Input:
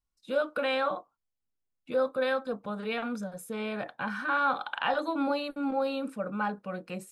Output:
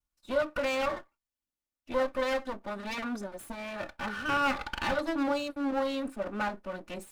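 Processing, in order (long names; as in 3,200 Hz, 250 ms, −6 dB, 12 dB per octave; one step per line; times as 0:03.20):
lower of the sound and its delayed copy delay 3.4 ms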